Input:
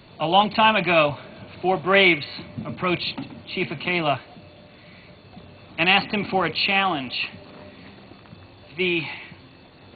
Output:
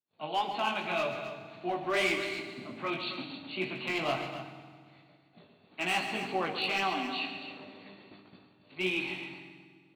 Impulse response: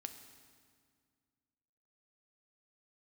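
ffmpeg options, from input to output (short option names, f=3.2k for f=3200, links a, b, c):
-filter_complex "[0:a]highpass=190,agate=range=-36dB:threshold=-46dB:ratio=16:detection=peak,dynaudnorm=f=230:g=11:m=10dB,asoftclip=type=hard:threshold=-10dB,flanger=delay=15.5:depth=4.3:speed=1.9,aecho=1:1:137|268.2:0.282|0.282[a];[1:a]atrim=start_sample=2205[b];[a][b]afir=irnorm=-1:irlink=0,volume=-7dB"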